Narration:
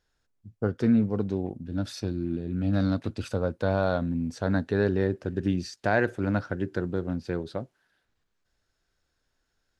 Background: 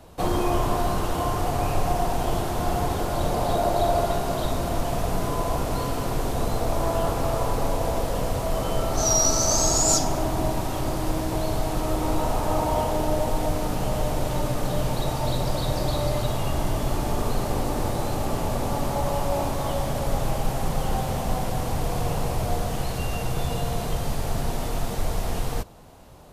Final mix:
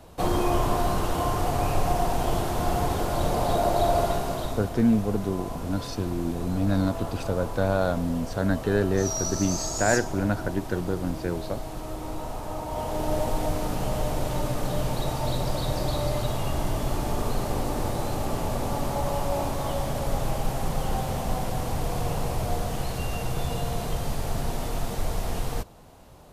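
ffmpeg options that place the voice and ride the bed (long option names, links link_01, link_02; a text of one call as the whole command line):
ffmpeg -i stem1.wav -i stem2.wav -filter_complex "[0:a]adelay=3950,volume=1dB[link_01];[1:a]volume=7dB,afade=type=out:start_time=4.04:duration=0.71:silence=0.354813,afade=type=in:start_time=12.67:duration=0.49:silence=0.421697[link_02];[link_01][link_02]amix=inputs=2:normalize=0" out.wav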